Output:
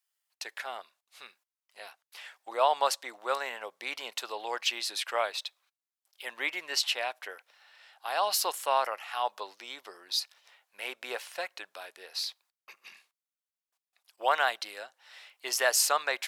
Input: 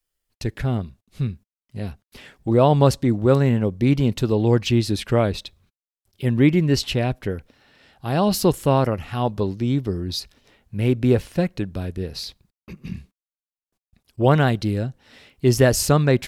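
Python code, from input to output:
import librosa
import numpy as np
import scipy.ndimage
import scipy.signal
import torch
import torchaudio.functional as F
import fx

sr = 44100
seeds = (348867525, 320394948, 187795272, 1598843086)

y = scipy.signal.sosfilt(scipy.signal.butter(4, 750.0, 'highpass', fs=sr, output='sos'), x)
y = y * 10.0 ** (-1.5 / 20.0)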